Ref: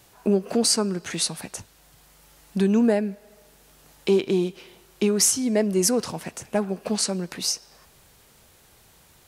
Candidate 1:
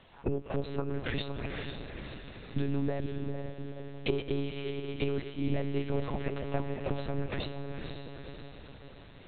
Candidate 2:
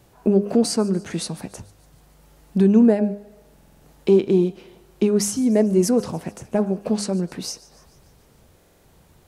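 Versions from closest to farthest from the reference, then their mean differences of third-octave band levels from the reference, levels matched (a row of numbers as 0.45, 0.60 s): 2, 1; 5.0, 16.0 dB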